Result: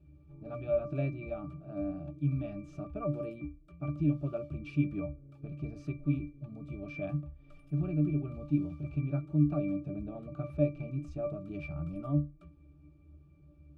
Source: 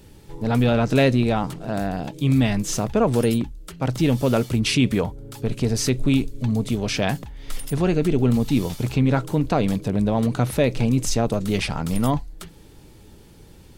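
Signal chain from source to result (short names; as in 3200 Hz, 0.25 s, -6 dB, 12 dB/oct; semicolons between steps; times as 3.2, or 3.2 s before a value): octave resonator D, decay 0.26 s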